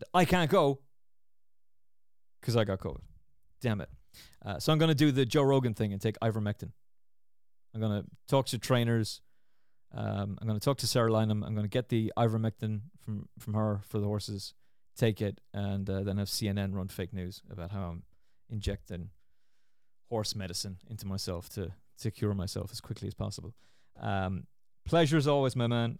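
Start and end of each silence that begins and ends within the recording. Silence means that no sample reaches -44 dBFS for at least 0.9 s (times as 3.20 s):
0.76–2.43 s
6.70–7.74 s
19.09–20.11 s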